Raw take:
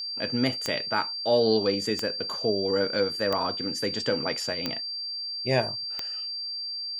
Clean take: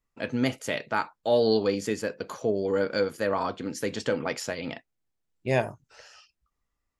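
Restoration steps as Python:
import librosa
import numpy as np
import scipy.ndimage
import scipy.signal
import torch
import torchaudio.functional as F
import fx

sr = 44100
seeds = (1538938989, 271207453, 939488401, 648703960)

y = fx.fix_declick_ar(x, sr, threshold=10.0)
y = fx.notch(y, sr, hz=4700.0, q=30.0)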